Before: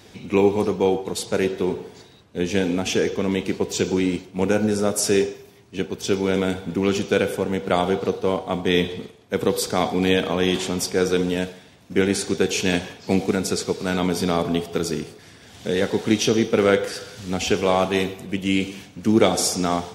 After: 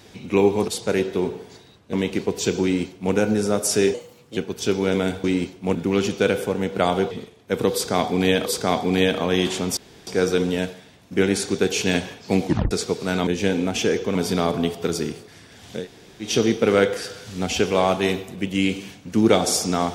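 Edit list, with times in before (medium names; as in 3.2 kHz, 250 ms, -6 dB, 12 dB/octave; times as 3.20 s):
0.68–1.13 s: delete
2.38–3.26 s: move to 14.06 s
3.96–4.47 s: copy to 6.66 s
5.27–5.79 s: speed 121%
8.02–8.93 s: delete
9.55–10.28 s: loop, 2 plays
10.86 s: insert room tone 0.30 s
13.25 s: tape stop 0.25 s
15.71–16.18 s: room tone, crossfade 0.16 s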